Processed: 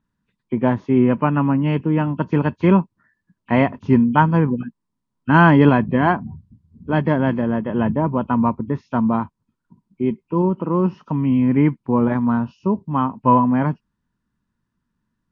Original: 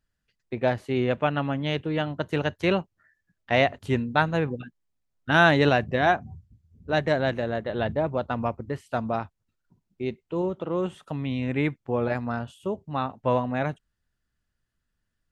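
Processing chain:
hearing-aid frequency compression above 2,200 Hz 1.5 to 1
hollow resonant body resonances 210/970 Hz, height 18 dB, ringing for 20 ms
level −3 dB

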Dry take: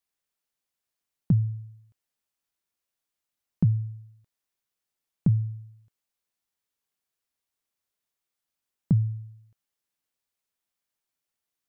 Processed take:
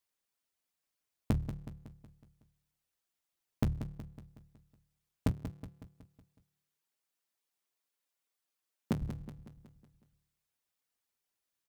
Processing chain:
sub-harmonics by changed cycles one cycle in 3, inverted
reverb reduction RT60 0.53 s
0:05.31–0:09.02: Bessel high-pass filter 220 Hz, order 2
downward compressor 6 to 1, threshold −28 dBFS, peak gain reduction 10.5 dB
repeating echo 185 ms, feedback 52%, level −11 dB

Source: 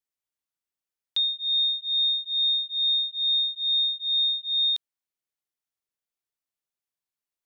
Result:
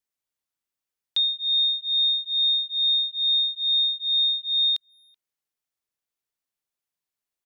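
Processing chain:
far-end echo of a speakerphone 380 ms, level −30 dB
level +2 dB

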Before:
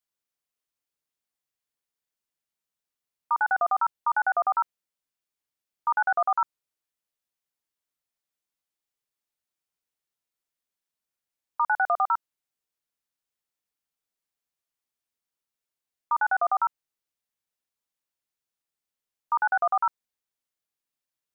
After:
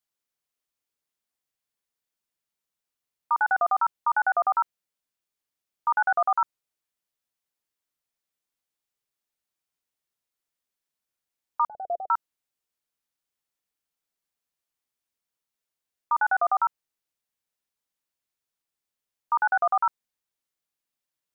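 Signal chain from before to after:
0:11.67–0:12.10: elliptic low-pass filter 680 Hz, stop band 40 dB
level +1 dB

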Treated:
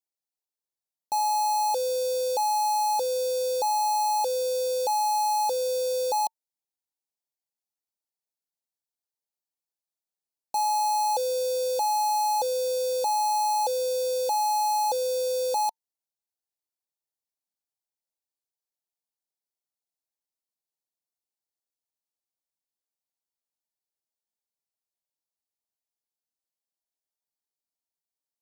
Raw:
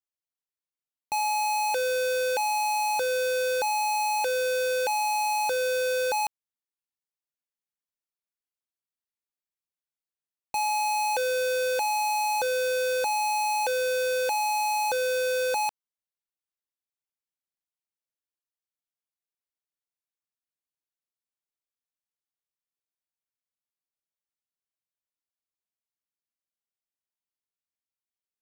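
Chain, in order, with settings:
drawn EQ curve 120 Hz 0 dB, 900 Hz +9 dB, 1,600 Hz −24 dB, 4,200 Hz +7 dB
level −6.5 dB

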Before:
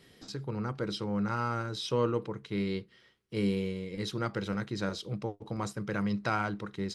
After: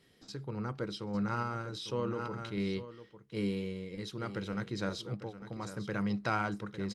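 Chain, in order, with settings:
sample-and-hold tremolo
single-tap delay 851 ms −12.5 dB
0:01.68–0:02.77: level that may fall only so fast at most 26 dB per second
level −1.5 dB

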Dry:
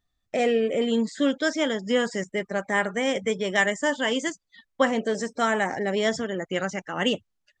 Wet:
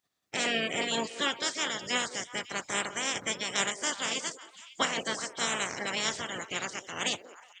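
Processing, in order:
ceiling on every frequency bin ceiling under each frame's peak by 29 dB
high-pass filter 82 Hz
echo through a band-pass that steps 184 ms, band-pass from 440 Hz, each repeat 1.4 octaves, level −10 dB
level −7 dB

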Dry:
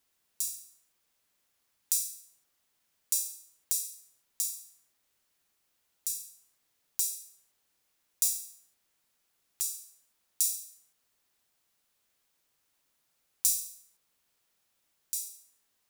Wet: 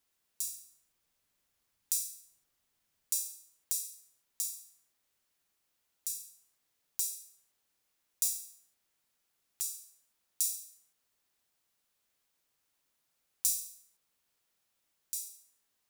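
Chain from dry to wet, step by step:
0:00.57–0:03.16: low-shelf EQ 160 Hz +9 dB
level −3.5 dB

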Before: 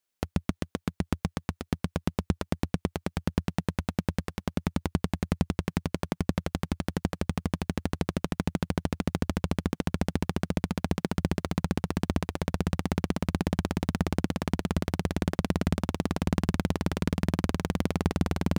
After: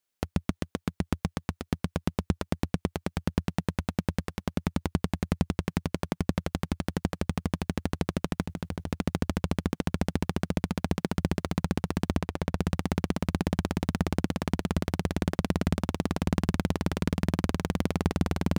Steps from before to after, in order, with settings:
0:08.41–0:08.93: compressor whose output falls as the input rises −32 dBFS, ratio −1
0:12.17–0:12.59: high-shelf EQ 4,300 Hz −5.5 dB

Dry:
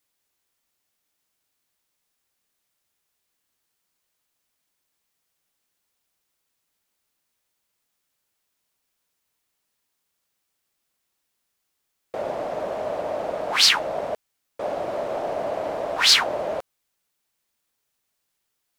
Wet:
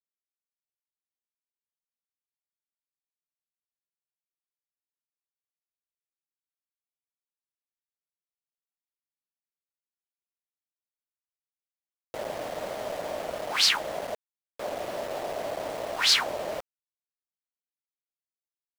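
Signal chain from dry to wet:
centre clipping without the shift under −30.5 dBFS
level −5.5 dB

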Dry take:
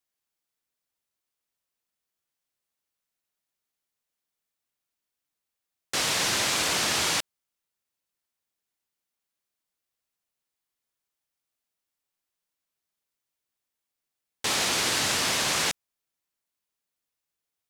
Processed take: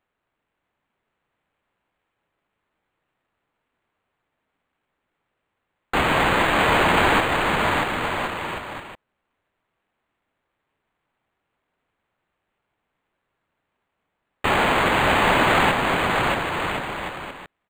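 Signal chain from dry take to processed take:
parametric band 940 Hz +5 dB
bouncing-ball delay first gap 630 ms, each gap 0.7×, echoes 5
linearly interpolated sample-rate reduction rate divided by 8×
level +7.5 dB

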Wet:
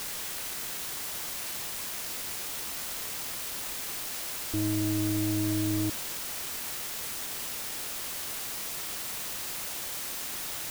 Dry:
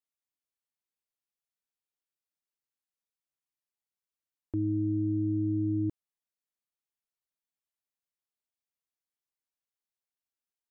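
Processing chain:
stylus tracing distortion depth 0.16 ms
bit-depth reduction 6 bits, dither triangular

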